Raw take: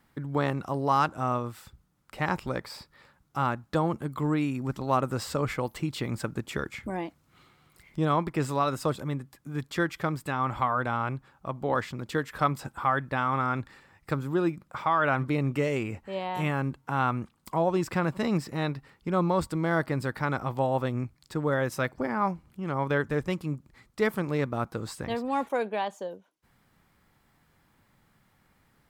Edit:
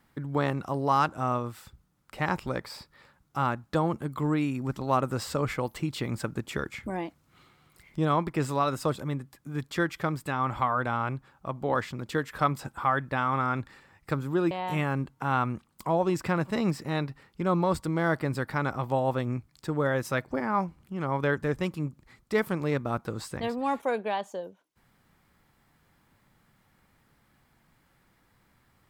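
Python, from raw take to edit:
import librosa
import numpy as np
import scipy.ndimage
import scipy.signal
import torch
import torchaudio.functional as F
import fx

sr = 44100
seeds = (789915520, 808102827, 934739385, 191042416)

y = fx.edit(x, sr, fx.cut(start_s=14.51, length_s=1.67), tone=tone)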